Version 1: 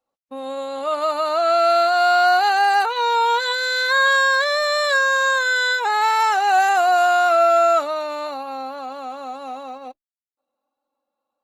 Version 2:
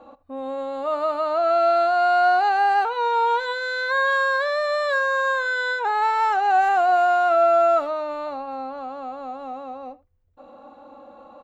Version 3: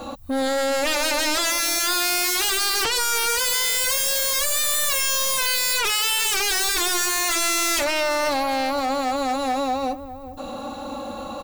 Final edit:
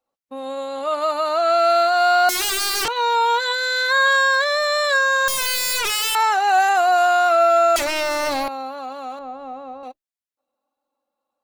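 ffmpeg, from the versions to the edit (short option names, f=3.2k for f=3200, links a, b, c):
-filter_complex "[2:a]asplit=3[a][b][c];[0:a]asplit=5[d][e][f][g][h];[d]atrim=end=2.292[i];[a]atrim=start=2.288:end=2.882[j];[e]atrim=start=2.878:end=5.282[k];[b]atrim=start=5.278:end=6.152[l];[f]atrim=start=6.148:end=7.762[m];[c]atrim=start=7.758:end=8.482[n];[g]atrim=start=8.478:end=9.192[o];[1:a]atrim=start=9.188:end=9.832[p];[h]atrim=start=9.828[q];[i][j]acrossfade=d=0.004:c1=hsin:c2=hsin[r];[r][k]acrossfade=d=0.004:c1=hsin:c2=hsin[s];[s][l]acrossfade=d=0.004:c1=hsin:c2=hsin[t];[t][m]acrossfade=d=0.004:c1=hsin:c2=hsin[u];[u][n]acrossfade=d=0.004:c1=hsin:c2=hsin[v];[v][o]acrossfade=d=0.004:c1=hsin:c2=hsin[w];[w][p]acrossfade=d=0.004:c1=hsin:c2=hsin[x];[x][q]acrossfade=d=0.004:c1=hsin:c2=hsin"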